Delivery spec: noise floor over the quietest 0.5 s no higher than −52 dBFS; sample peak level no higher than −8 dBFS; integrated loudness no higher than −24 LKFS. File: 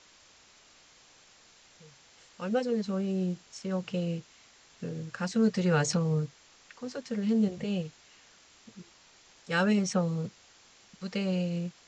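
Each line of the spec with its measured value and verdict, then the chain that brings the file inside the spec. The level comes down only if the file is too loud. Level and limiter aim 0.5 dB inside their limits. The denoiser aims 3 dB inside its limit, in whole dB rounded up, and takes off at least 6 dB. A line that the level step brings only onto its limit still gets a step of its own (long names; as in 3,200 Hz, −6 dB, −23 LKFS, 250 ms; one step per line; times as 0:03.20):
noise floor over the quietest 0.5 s −59 dBFS: in spec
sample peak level −14.5 dBFS: in spec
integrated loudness −30.5 LKFS: in spec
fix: no processing needed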